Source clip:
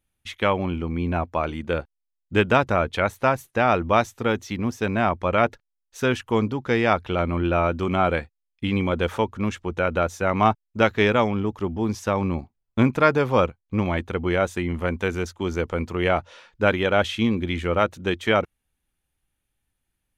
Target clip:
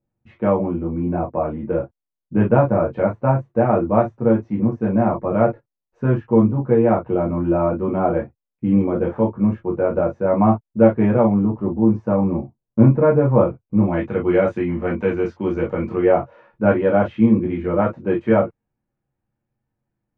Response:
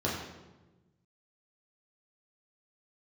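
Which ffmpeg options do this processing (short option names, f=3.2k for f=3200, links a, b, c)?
-filter_complex "[0:a]asetnsamples=n=441:p=0,asendcmd='13.92 lowpass f 2400;16 lowpass f 1400',lowpass=1k[a];[1:a]atrim=start_sample=2205,atrim=end_sample=3969,asetrate=66150,aresample=44100[b];[a][b]afir=irnorm=-1:irlink=0,volume=-4.5dB"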